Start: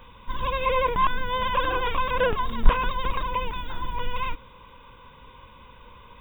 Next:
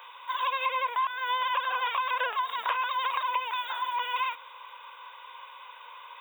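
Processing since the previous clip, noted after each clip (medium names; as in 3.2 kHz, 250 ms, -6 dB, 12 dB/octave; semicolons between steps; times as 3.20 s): high-pass 720 Hz 24 dB/octave; compression 12:1, threshold -30 dBFS, peak gain reduction 12.5 dB; trim +5 dB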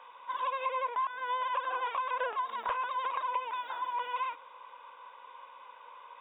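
tilt EQ -5 dB/octave; trim -3.5 dB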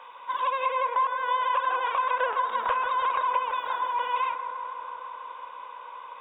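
bucket-brigade echo 162 ms, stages 2048, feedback 84%, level -10 dB; trim +6 dB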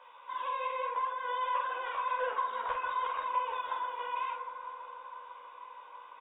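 chorus voices 6, 0.56 Hz, delay 14 ms, depth 2.2 ms; doubling 47 ms -5 dB; trim -6 dB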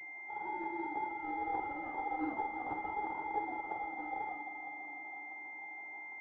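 vibrato 0.36 Hz 32 cents; frequency shift -190 Hz; class-D stage that switches slowly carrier 2.1 kHz; trim -2.5 dB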